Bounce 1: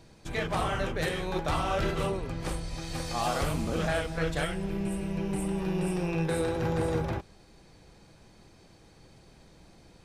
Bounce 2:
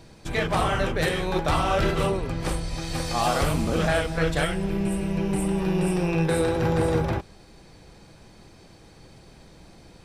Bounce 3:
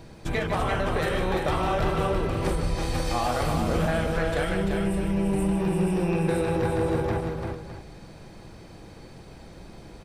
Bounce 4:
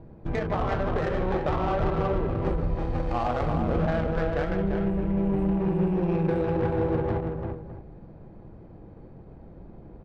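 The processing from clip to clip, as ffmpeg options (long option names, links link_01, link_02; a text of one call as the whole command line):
ffmpeg -i in.wav -af "bandreject=frequency=6600:width=24,volume=6dB" out.wav
ffmpeg -i in.wav -af "acompressor=threshold=-26dB:ratio=6,equalizer=frequency=6200:width=0.43:gain=-5.5,aecho=1:1:150|342|610:0.335|0.562|0.211,volume=3.5dB" out.wav
ffmpeg -i in.wav -af "adynamicsmooth=sensitivity=1:basefreq=810" out.wav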